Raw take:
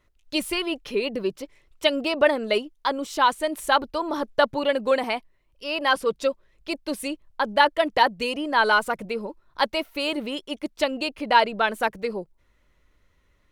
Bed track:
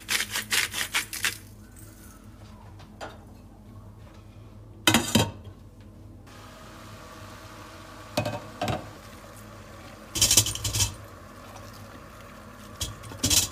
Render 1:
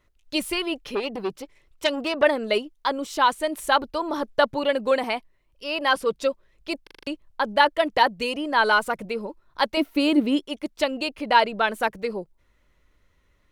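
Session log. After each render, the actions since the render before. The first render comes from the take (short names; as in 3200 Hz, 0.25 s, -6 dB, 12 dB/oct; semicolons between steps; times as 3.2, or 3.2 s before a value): 0.95–2.23 core saturation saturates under 1900 Hz; 6.83 stutter in place 0.04 s, 6 plays; 9.77–10.46 bell 280 Hz +12.5 dB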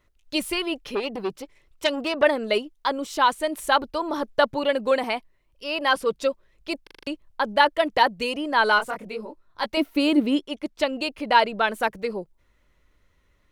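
8.78–9.64 detuned doubles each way 56 cents -> 39 cents; 10.37–10.93 high shelf 8200 Hz -7 dB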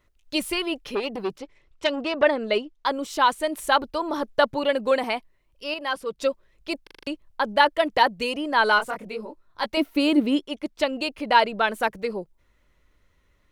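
1.38–2.86 air absorption 74 m; 5.74–6.18 gain -6.5 dB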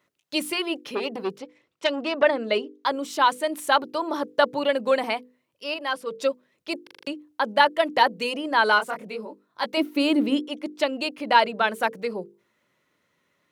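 HPF 140 Hz 24 dB/oct; notches 50/100/150/200/250/300/350/400/450/500 Hz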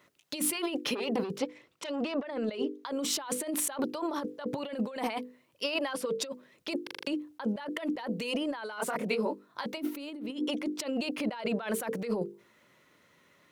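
limiter -12.5 dBFS, peak gain reduction 8.5 dB; negative-ratio compressor -34 dBFS, ratio -1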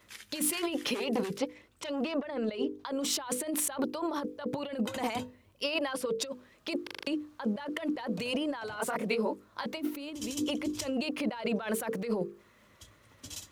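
add bed track -22 dB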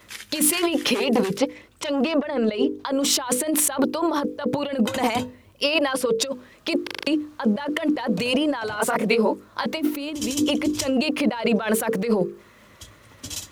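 gain +10.5 dB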